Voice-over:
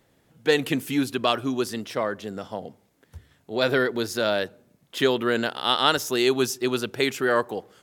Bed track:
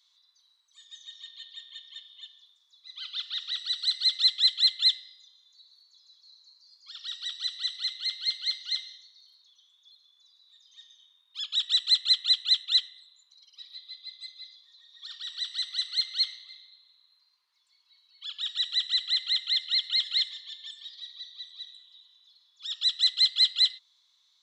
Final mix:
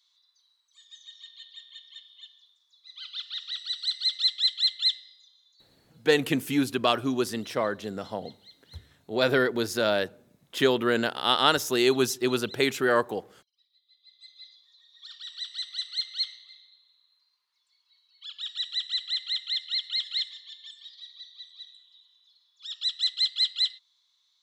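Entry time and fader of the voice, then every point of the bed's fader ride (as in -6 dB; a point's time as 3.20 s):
5.60 s, -1.0 dB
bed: 5.47 s -2 dB
6.37 s -23.5 dB
13.80 s -23.5 dB
14.40 s -3 dB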